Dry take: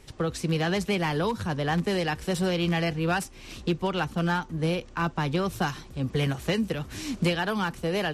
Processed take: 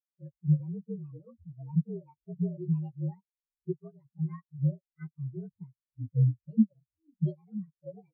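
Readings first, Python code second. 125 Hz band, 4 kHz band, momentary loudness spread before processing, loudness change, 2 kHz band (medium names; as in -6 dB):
-1.0 dB, under -40 dB, 5 LU, -4.5 dB, under -35 dB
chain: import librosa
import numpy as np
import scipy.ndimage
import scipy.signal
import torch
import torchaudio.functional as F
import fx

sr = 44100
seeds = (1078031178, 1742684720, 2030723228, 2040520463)

y = fx.partial_stretch(x, sr, pct=116)
y = fx.spectral_expand(y, sr, expansion=4.0)
y = y * 10.0 ** (3.0 / 20.0)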